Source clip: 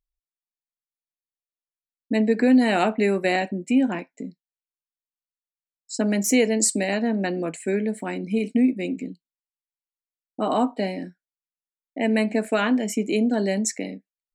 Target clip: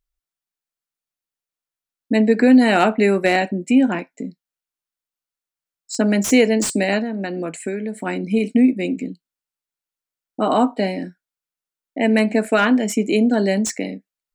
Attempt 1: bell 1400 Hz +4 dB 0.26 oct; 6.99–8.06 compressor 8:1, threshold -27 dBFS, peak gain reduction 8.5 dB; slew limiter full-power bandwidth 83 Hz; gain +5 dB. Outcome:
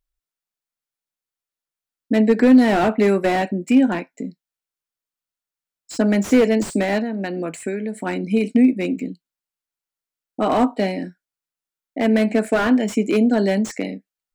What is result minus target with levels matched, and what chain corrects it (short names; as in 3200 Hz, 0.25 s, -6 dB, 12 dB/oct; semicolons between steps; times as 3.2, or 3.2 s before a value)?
slew limiter: distortion +7 dB
bell 1400 Hz +4 dB 0.26 oct; 6.99–8.06 compressor 8:1, threshold -27 dBFS, peak gain reduction 8.5 dB; slew limiter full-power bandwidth 327.5 Hz; gain +5 dB